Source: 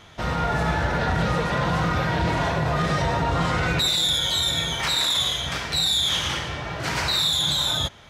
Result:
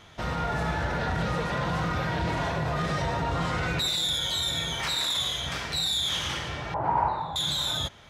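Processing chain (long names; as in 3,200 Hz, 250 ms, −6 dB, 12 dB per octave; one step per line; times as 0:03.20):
in parallel at −3 dB: brickwall limiter −20.5 dBFS, peak gain reduction 8.5 dB
0:06.74–0:07.36: on the sum: low-pass with resonance 890 Hz, resonance Q 8.1
level −8 dB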